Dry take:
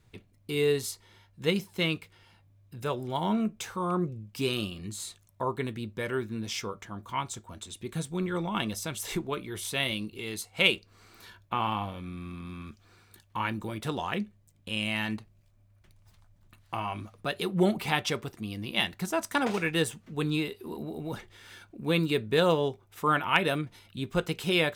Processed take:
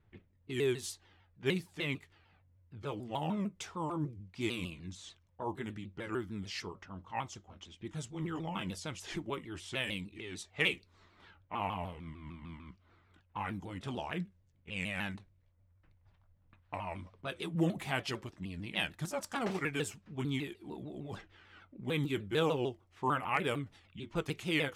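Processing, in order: sawtooth pitch modulation -3.5 st, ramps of 150 ms; level-controlled noise filter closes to 2.2 kHz, open at -29 dBFS; trim -5.5 dB

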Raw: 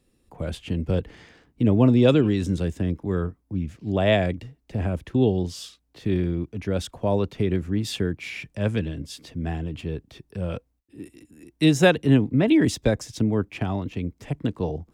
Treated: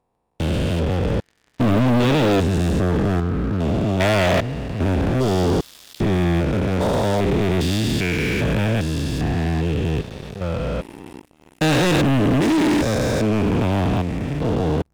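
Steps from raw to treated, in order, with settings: spectrogram pixelated in time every 400 ms; peaking EQ 1.4 kHz +3.5 dB 2.8 oct; waveshaping leveller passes 5; trim -5 dB

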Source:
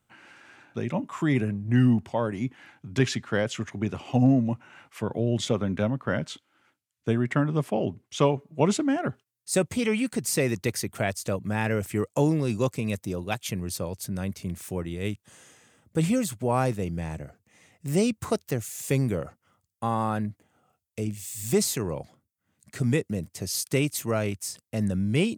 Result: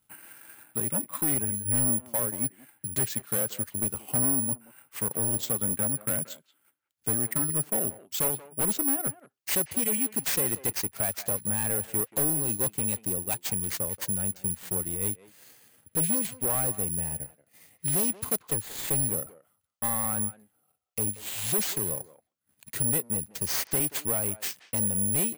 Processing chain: transient shaper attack +5 dB, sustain -8 dB; saturation -25 dBFS, distortion -6 dB; careless resampling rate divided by 4×, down none, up zero stuff; speakerphone echo 180 ms, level -15 dB; trim -3.5 dB

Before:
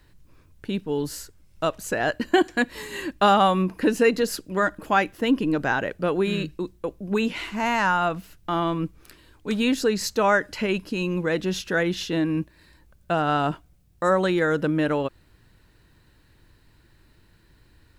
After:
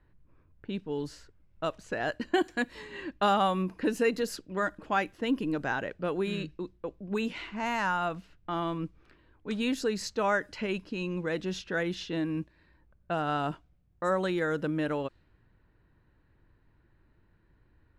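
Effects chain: level-controlled noise filter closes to 1.7 kHz, open at -18.5 dBFS; trim -7.5 dB

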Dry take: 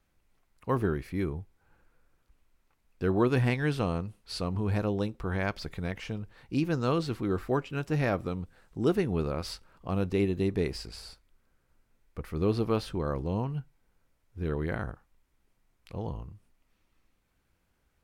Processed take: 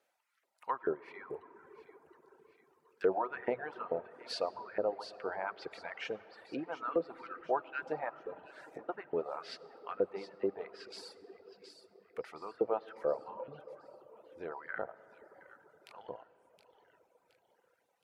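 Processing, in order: low-pass that closes with the level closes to 1.1 kHz, closed at -26 dBFS; 8.09–8.89 s: compressor with a negative ratio -39 dBFS, ratio -1; peaking EQ 100 Hz +3 dB 1.8 oct; band-stop 1.1 kHz, Q 9.5; feedback echo behind a high-pass 719 ms, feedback 44%, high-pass 2.5 kHz, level -8.5 dB; LFO high-pass saw up 2.3 Hz 460–1700 Hz; hum notches 60/120/180 Hz; on a send at -7 dB: reverberation RT60 4.7 s, pre-delay 50 ms; on the sum: reverb removal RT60 1.6 s; trim -2 dB

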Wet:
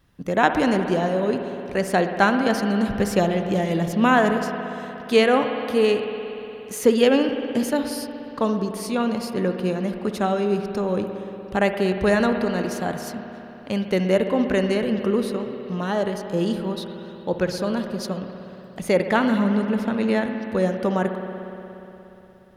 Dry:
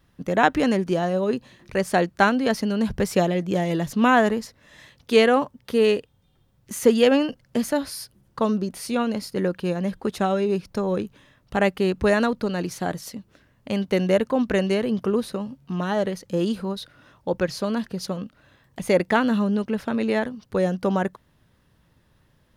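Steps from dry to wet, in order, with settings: spring tank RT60 3.4 s, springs 59 ms, chirp 80 ms, DRR 6 dB

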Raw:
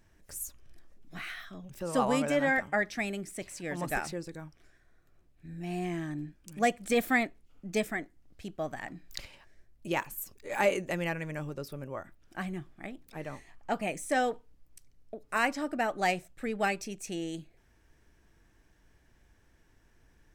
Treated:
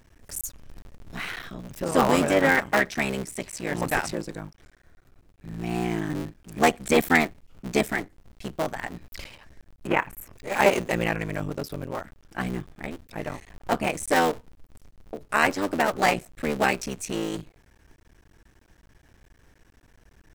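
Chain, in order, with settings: cycle switcher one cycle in 3, muted; 9.87–10.33 s: resonant high shelf 3.1 kHz -10.5 dB, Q 1.5; trim +8.5 dB

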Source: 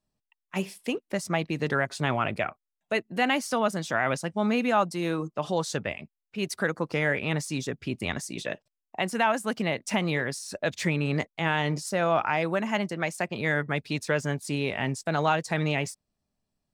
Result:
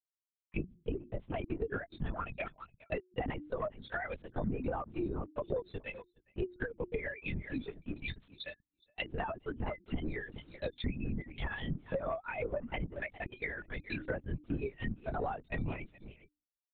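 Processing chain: expander on every frequency bin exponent 3; bass shelf 160 Hz -7 dB; echo from a far wall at 71 m, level -21 dB; tremolo triangle 5.8 Hz, depth 55%; waveshaping leveller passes 1; hum notches 60/120/180/240/300/360 Hz; LPC vocoder at 8 kHz whisper; compression 16:1, threshold -40 dBFS, peak gain reduction 17.5 dB; dynamic bell 1.3 kHz, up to -3 dB, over -54 dBFS, Q 0.86; low-pass that closes with the level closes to 1.4 kHz, closed at -40.5 dBFS; trim +9 dB

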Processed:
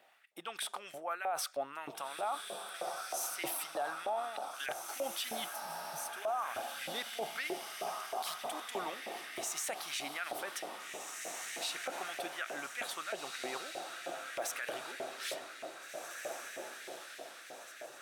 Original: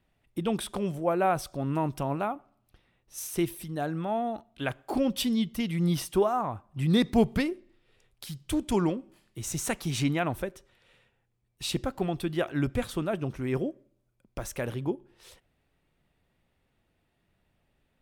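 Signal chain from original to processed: reverse; compression 12:1, threshold -39 dBFS, peak gain reduction 23 dB; reverse; peaking EQ 1 kHz -9 dB 0.22 oct; hum notches 60/120 Hz; on a send: echo that smears into a reverb 1845 ms, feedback 51%, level -6.5 dB; on the sum: LFO high-pass saw up 3.2 Hz 600–2000 Hz; peak limiter -38 dBFS, peak gain reduction 11.5 dB; spectral replace 5.57–6.03 s, 210–5800 Hz after; trim +10.5 dB

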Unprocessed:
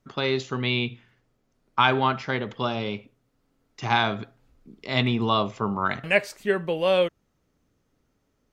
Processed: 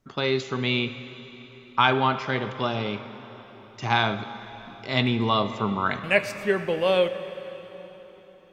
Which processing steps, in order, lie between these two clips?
plate-style reverb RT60 4.3 s, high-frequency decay 0.85×, DRR 10.5 dB

